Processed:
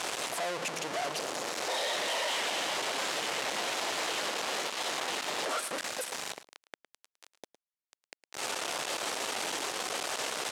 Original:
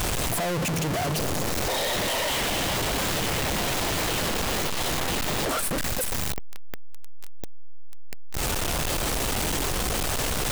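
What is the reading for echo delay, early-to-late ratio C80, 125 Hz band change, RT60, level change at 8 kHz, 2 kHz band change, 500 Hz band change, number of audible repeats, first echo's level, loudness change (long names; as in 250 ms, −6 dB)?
109 ms, no reverb audible, −25.5 dB, no reverb audible, −7.0 dB, −4.5 dB, −6.5 dB, 1, −15.5 dB, −7.0 dB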